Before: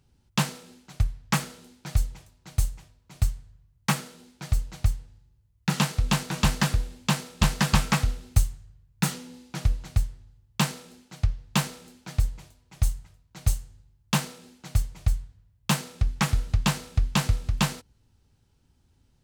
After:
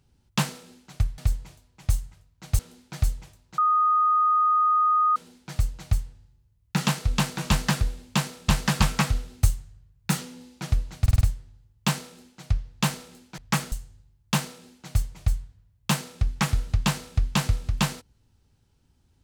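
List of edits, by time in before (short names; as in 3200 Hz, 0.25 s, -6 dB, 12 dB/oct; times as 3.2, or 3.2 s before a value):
1.18–1.52 swap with 12.11–13.52
2.51–4.09 bleep 1240 Hz -17.5 dBFS
9.94 stutter 0.05 s, 5 plays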